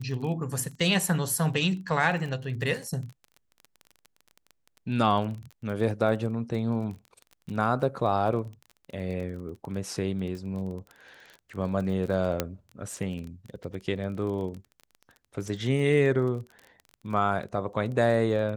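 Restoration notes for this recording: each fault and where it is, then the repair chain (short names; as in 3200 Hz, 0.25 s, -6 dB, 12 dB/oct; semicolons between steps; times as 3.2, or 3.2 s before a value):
crackle 22/s -35 dBFS
12.4 pop -10 dBFS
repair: de-click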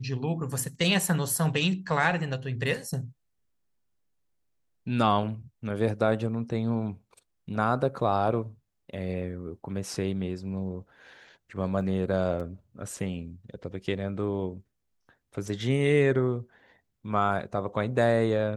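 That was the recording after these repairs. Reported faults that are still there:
12.4 pop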